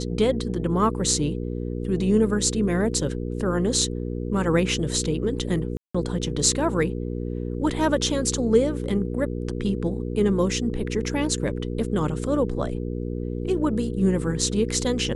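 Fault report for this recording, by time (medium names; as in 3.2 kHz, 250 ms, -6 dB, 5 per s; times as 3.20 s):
hum 60 Hz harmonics 8 -29 dBFS
5.77–5.95 s: dropout 175 ms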